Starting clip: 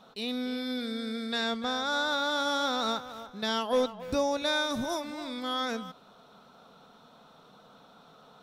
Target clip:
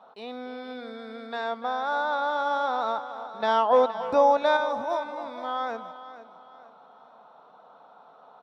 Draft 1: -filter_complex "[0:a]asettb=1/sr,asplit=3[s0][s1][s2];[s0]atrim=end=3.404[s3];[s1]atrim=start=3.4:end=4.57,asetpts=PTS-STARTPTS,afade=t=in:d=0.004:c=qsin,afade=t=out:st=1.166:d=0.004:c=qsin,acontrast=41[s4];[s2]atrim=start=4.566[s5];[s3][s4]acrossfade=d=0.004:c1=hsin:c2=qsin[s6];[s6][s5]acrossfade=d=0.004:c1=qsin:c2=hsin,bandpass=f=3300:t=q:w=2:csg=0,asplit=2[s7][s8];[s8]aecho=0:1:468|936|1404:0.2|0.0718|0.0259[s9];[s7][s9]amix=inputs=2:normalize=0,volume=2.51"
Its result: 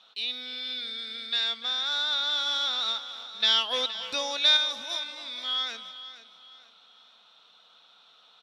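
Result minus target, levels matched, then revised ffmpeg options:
4 kHz band +18.0 dB
-filter_complex "[0:a]asettb=1/sr,asplit=3[s0][s1][s2];[s0]atrim=end=3.404[s3];[s1]atrim=start=3.4:end=4.57,asetpts=PTS-STARTPTS,afade=t=in:d=0.004:c=qsin,afade=t=out:st=1.166:d=0.004:c=qsin,acontrast=41[s4];[s2]atrim=start=4.566[s5];[s3][s4]acrossfade=d=0.004:c1=hsin:c2=qsin[s6];[s6][s5]acrossfade=d=0.004:c1=qsin:c2=hsin,bandpass=f=830:t=q:w=2:csg=0,asplit=2[s7][s8];[s8]aecho=0:1:468|936|1404:0.2|0.0718|0.0259[s9];[s7][s9]amix=inputs=2:normalize=0,volume=2.51"

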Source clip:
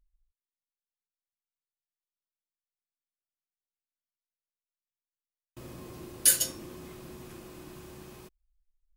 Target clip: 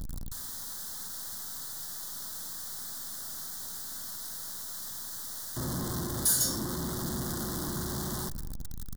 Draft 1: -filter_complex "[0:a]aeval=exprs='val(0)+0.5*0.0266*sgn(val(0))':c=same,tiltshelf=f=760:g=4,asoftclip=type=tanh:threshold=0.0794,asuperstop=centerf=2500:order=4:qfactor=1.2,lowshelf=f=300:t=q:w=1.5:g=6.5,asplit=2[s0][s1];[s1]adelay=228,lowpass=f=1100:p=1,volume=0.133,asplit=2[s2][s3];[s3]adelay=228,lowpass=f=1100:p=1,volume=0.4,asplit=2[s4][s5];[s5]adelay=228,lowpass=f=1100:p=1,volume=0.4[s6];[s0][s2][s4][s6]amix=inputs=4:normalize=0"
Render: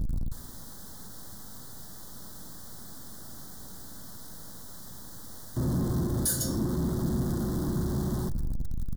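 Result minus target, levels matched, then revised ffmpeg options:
1 kHz band -5.5 dB
-filter_complex "[0:a]aeval=exprs='val(0)+0.5*0.0266*sgn(val(0))':c=same,tiltshelf=f=760:g=-4.5,asoftclip=type=tanh:threshold=0.0794,asuperstop=centerf=2500:order=4:qfactor=1.2,lowshelf=f=300:t=q:w=1.5:g=6.5,asplit=2[s0][s1];[s1]adelay=228,lowpass=f=1100:p=1,volume=0.133,asplit=2[s2][s3];[s3]adelay=228,lowpass=f=1100:p=1,volume=0.4,asplit=2[s4][s5];[s5]adelay=228,lowpass=f=1100:p=1,volume=0.4[s6];[s0][s2][s4][s6]amix=inputs=4:normalize=0"

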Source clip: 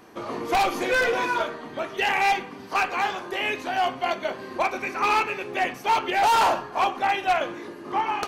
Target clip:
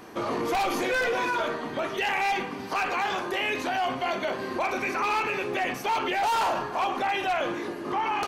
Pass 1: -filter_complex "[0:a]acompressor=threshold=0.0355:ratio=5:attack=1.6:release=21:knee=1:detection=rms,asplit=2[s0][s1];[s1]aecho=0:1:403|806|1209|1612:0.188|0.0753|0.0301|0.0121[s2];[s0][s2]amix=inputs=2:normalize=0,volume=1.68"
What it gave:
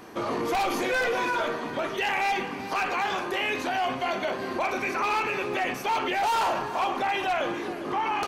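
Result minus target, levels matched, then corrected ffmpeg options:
echo-to-direct +10.5 dB
-filter_complex "[0:a]acompressor=threshold=0.0355:ratio=5:attack=1.6:release=21:knee=1:detection=rms,asplit=2[s0][s1];[s1]aecho=0:1:403|806:0.0562|0.0225[s2];[s0][s2]amix=inputs=2:normalize=0,volume=1.68"

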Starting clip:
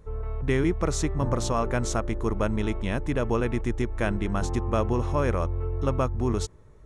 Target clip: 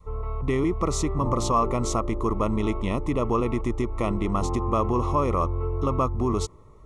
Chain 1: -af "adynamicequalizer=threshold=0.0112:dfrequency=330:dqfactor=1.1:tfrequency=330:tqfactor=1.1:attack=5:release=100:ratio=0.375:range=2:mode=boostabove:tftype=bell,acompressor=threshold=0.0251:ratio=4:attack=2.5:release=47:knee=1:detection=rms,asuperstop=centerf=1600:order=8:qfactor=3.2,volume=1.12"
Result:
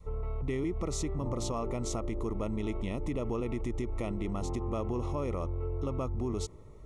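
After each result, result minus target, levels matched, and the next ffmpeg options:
compression: peak gain reduction +8.5 dB; 1 kHz band -6.5 dB
-af "adynamicequalizer=threshold=0.0112:dfrequency=330:dqfactor=1.1:tfrequency=330:tqfactor=1.1:attack=5:release=100:ratio=0.375:range=2:mode=boostabove:tftype=bell,acompressor=threshold=0.0944:ratio=4:attack=2.5:release=47:knee=1:detection=rms,asuperstop=centerf=1600:order=8:qfactor=3.2,volume=1.12"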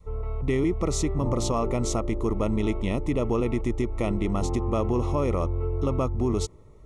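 1 kHz band -6.0 dB
-af "adynamicequalizer=threshold=0.0112:dfrequency=330:dqfactor=1.1:tfrequency=330:tqfactor=1.1:attack=5:release=100:ratio=0.375:range=2:mode=boostabove:tftype=bell,acompressor=threshold=0.0944:ratio=4:attack=2.5:release=47:knee=1:detection=rms,asuperstop=centerf=1600:order=8:qfactor=3.2,equalizer=f=1100:t=o:w=0.43:g=11,volume=1.12"

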